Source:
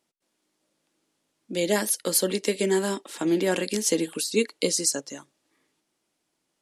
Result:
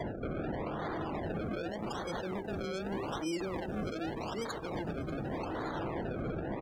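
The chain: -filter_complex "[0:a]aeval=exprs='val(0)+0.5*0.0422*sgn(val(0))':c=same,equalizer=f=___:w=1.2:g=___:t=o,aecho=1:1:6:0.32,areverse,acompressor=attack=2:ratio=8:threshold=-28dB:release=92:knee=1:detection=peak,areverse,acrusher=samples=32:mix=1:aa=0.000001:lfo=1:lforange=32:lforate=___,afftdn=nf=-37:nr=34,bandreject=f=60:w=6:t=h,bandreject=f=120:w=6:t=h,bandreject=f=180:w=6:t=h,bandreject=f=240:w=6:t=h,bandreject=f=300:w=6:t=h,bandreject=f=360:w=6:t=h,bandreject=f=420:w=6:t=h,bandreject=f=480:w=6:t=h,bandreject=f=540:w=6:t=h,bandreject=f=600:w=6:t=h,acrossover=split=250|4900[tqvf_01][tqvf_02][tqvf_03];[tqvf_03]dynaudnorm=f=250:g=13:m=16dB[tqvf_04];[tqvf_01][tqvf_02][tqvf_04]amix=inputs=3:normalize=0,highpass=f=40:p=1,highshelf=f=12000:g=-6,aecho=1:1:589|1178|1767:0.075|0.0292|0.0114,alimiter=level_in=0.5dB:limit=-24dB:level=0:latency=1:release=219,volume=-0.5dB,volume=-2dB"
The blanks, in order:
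5500, 6, 0.84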